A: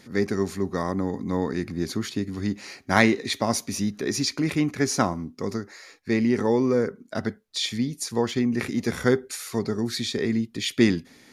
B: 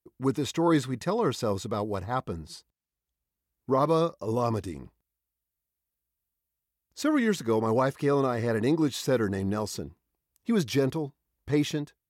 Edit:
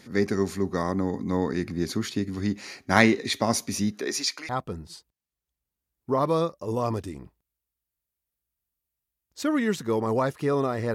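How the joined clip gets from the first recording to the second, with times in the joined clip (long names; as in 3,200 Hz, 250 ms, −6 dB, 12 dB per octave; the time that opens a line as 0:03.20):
A
0:03.90–0:04.49: high-pass filter 210 Hz → 1,300 Hz
0:04.49: continue with B from 0:02.09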